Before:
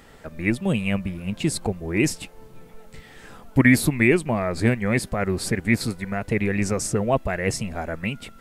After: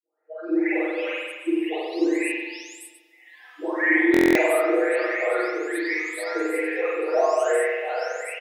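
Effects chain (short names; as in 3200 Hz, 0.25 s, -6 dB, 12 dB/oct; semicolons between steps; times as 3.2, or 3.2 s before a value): spectral delay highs late, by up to 0.739 s; spectral noise reduction 25 dB; brick-wall FIR high-pass 310 Hz; high shelf 2400 Hz -8.5 dB; comb 6.4 ms, depth 95%; spring tank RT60 1.3 s, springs 44 ms, chirp 65 ms, DRR -5.5 dB; stuck buffer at 4.12, samples 1024, times 9; gain -2.5 dB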